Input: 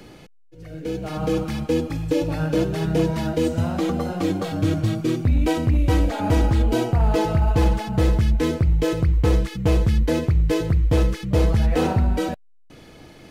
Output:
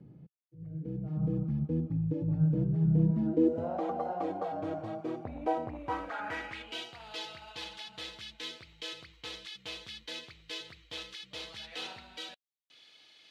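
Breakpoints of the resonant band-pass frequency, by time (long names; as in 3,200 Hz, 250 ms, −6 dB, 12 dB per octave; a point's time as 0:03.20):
resonant band-pass, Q 2.8
0:02.99 150 Hz
0:03.84 740 Hz
0:05.66 740 Hz
0:06.89 3,600 Hz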